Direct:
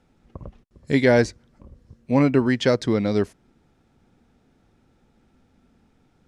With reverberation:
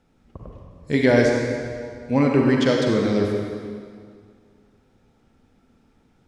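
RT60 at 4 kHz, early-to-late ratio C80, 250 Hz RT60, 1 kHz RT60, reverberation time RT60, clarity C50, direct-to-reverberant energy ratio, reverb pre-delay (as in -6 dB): 1.8 s, 2.0 dB, 2.0 s, 2.1 s, 2.1 s, 0.5 dB, 0.0 dB, 39 ms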